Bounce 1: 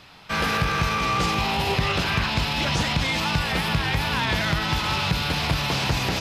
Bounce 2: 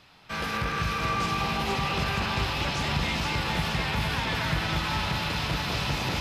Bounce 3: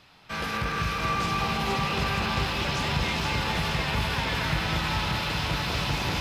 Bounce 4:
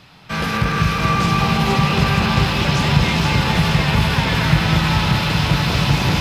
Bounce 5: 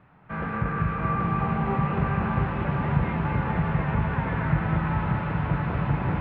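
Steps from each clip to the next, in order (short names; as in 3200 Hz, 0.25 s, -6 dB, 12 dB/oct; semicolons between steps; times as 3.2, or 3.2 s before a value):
echo with dull and thin repeats by turns 0.235 s, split 2400 Hz, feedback 82%, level -2 dB; gain -7.5 dB
lo-fi delay 0.314 s, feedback 80%, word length 9-bit, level -11 dB
bell 150 Hz +7.5 dB 1.3 oct; gain +8 dB
LPF 1800 Hz 24 dB/oct; gain -8 dB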